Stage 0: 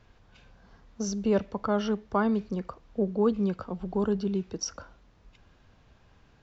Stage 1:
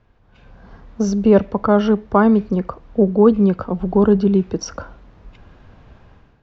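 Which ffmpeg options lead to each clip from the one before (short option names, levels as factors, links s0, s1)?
-af "lowpass=f=1600:p=1,dynaudnorm=f=180:g=5:m=4.47,volume=1.19"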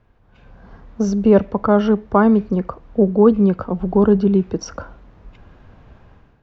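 -af "equalizer=f=4700:t=o:w=1.7:g=-3.5"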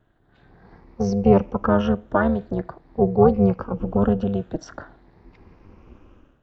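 -af "afftfilt=real='re*pow(10,11/40*sin(2*PI*(0.84*log(max(b,1)*sr/1024/100)/log(2)-(0.45)*(pts-256)/sr)))':imag='im*pow(10,11/40*sin(2*PI*(0.84*log(max(b,1)*sr/1024/100)/log(2)-(0.45)*(pts-256)/sr)))':win_size=1024:overlap=0.75,tremolo=f=300:d=0.857,volume=0.75"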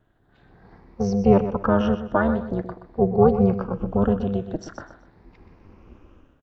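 -af "aecho=1:1:125|250|375:0.266|0.0798|0.0239,volume=0.891"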